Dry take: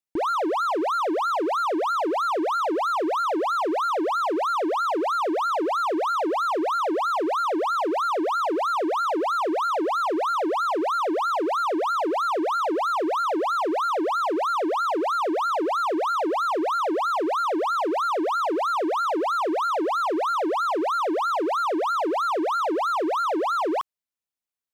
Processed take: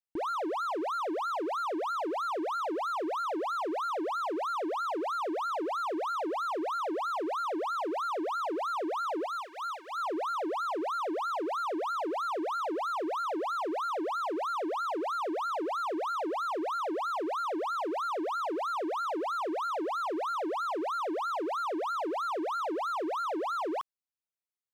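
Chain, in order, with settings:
0:09.26–0:09.98: high-pass filter 1,200 Hz 12 dB per octave
level −8.5 dB

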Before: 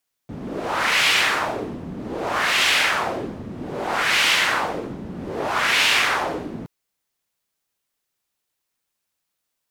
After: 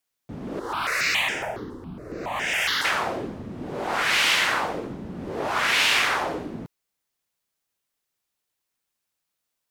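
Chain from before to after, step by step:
0:00.59–0:02.85: step-sequenced phaser 7.2 Hz 660–4,200 Hz
level −2.5 dB

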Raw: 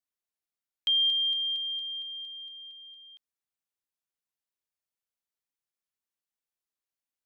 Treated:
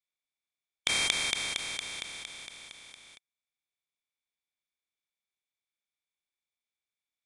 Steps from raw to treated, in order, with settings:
compressing power law on the bin magnitudes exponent 0.19
hollow resonant body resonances 2,300/3,500 Hz, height 17 dB, ringing for 20 ms
downsampling to 22,050 Hz
level −3.5 dB

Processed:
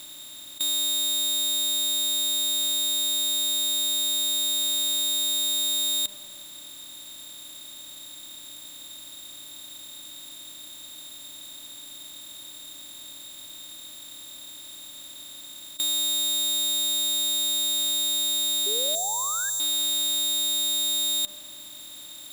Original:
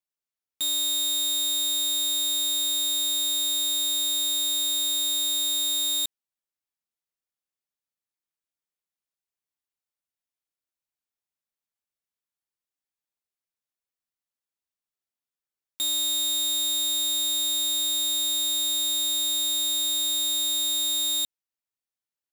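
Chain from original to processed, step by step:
compressor on every frequency bin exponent 0.2
0:18.95–0:19.60: drawn EQ curve 110 Hz 0 dB, 200 Hz −15 dB, 2,300 Hz −30 dB, 6,200 Hz +7 dB, 11,000 Hz −4 dB
0:18.66–0:19.50: sound drawn into the spectrogram rise 390–1,700 Hz −35 dBFS
delay with a low-pass on its return 95 ms, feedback 75%, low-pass 880 Hz, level −15 dB

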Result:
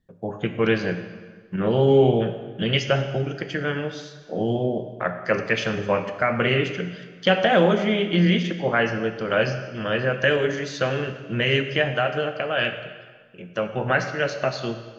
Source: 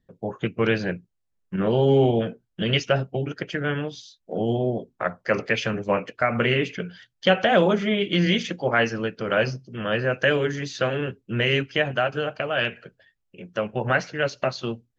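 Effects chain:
0:08.01–0:09.11: high-shelf EQ 5,200 Hz −12 dB
dense smooth reverb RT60 1.5 s, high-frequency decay 0.9×, DRR 7 dB

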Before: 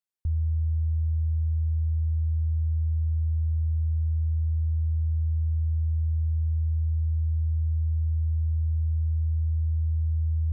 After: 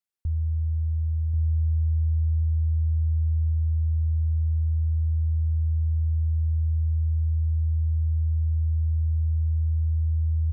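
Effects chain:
repeating echo 1,088 ms, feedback 35%, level −5 dB

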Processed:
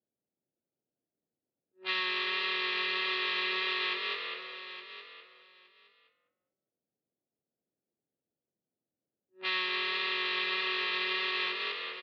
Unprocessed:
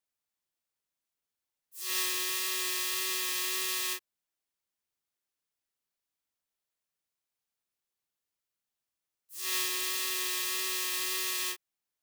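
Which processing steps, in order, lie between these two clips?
adaptive Wiener filter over 41 samples
high-pass filter 160 Hz 12 dB per octave
low-shelf EQ 400 Hz +6.5 dB
soft clipping −26 dBFS, distortion −16 dB
echo with shifted repeats 203 ms, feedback 45%, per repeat +41 Hz, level −8 dB
downward compressor 6 to 1, threshold −42 dBFS, peak gain reduction 10 dB
elliptic low-pass filter 4,100 Hz, stop band 50 dB
low-pass that shuts in the quiet parts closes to 530 Hz, open at −47 dBFS
parametric band 1,800 Hz +11 dB 3 octaves
on a send: repeating echo 866 ms, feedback 17%, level −12 dB
on the sum: level +8.5 dB

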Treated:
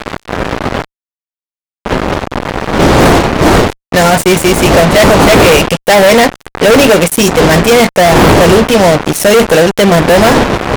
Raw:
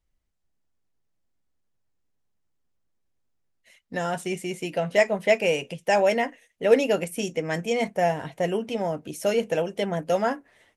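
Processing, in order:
wind on the microphone 570 Hz −30 dBFS
high-shelf EQ 7,700 Hz +2.5 dB
fuzz pedal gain 36 dB, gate −35 dBFS
boost into a limiter +16 dB
level −1 dB

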